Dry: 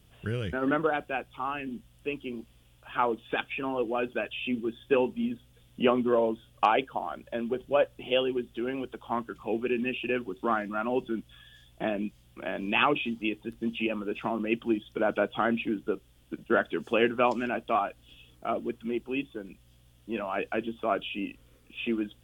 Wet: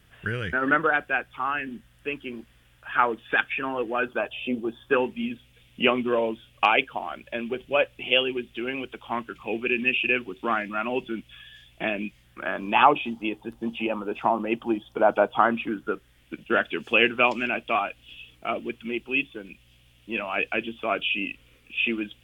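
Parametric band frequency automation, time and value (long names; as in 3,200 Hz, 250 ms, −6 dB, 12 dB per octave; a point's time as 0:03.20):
parametric band +13 dB 1 octave
0:03.98 1,700 Hz
0:04.48 500 Hz
0:05.18 2,400 Hz
0:12.07 2,400 Hz
0:12.82 850 Hz
0:15.25 850 Hz
0:16.43 2,500 Hz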